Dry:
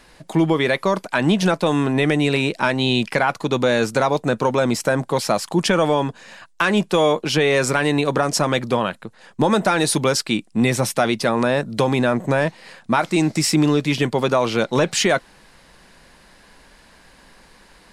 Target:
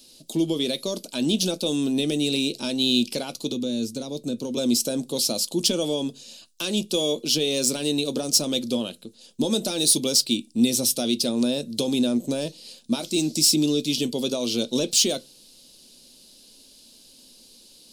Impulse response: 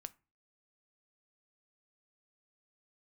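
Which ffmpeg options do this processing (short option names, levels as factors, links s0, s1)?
-filter_complex "[0:a]aexciter=amount=9.8:drive=8.1:freq=2800,asettb=1/sr,asplit=3[s0][s1][s2];[s0]atrim=end=3.524[s3];[s1]atrim=start=3.52:end=4.57,asetpts=PTS-STARTPTS,afade=t=in:d=0.004:c=qsin,afade=t=out:st=1.046:d=0.004:c=qsin,acrossover=split=310[s4][s5];[s5]acompressor=threshold=0.0631:ratio=2[s6];[s4][s6]amix=inputs=2:normalize=0[s7];[s2]atrim=start=4.566[s8];[s3][s7]acrossfade=d=0.004:c1=hsin:c2=qsin[s9];[s9][s8]acrossfade=d=0.004:c1=qsin:c2=hsin,equalizer=f=250:t=o:w=1:g=12,equalizer=f=500:t=o:w=1:g=7,equalizer=f=1000:t=o:w=1:g=-7,equalizer=f=2000:t=o:w=1:g=-8,equalizer=f=8000:t=o:w=1:g=-6[s10];[1:a]atrim=start_sample=2205,asetrate=70560,aresample=44100[s11];[s10][s11]afir=irnorm=-1:irlink=0,volume=0.501"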